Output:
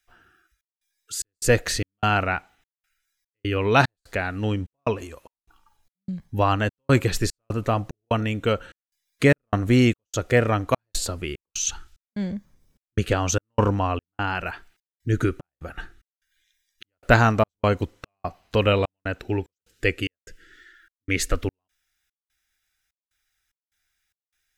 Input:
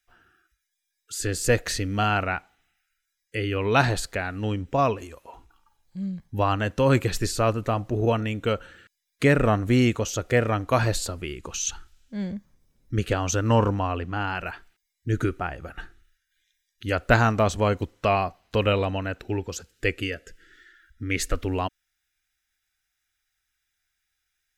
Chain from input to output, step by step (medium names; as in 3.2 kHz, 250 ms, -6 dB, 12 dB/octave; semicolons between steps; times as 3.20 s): trance gate "xxx.xx.xx." 74 bpm -60 dB; trim +2.5 dB